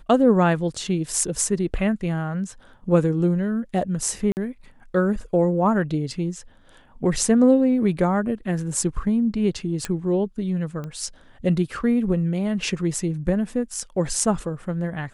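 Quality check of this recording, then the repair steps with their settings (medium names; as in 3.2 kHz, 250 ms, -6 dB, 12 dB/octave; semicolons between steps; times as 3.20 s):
4.32–4.37 s: dropout 49 ms
9.85 s: pop -11 dBFS
10.84 s: pop -22 dBFS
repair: de-click; interpolate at 4.32 s, 49 ms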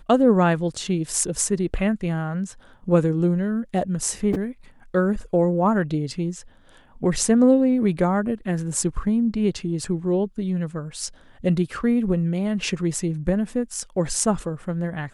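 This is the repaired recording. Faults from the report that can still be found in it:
nothing left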